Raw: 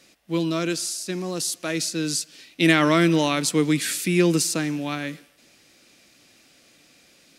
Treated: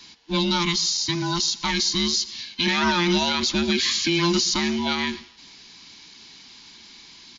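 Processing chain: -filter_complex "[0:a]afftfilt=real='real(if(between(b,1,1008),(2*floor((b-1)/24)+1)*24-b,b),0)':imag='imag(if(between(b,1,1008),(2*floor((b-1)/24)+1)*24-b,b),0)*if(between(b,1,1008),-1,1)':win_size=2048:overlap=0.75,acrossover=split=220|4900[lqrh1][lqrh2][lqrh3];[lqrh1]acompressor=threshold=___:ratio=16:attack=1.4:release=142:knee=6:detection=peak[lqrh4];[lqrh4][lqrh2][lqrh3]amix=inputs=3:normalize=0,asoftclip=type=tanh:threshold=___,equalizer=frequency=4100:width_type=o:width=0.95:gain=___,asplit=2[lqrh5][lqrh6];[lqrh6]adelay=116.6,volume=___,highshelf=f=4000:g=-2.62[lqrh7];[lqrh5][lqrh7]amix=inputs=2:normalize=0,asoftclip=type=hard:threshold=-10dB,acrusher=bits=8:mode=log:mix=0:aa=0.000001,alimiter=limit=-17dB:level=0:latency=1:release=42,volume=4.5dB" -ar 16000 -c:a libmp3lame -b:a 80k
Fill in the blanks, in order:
-32dB, -16.5dB, 11, -22dB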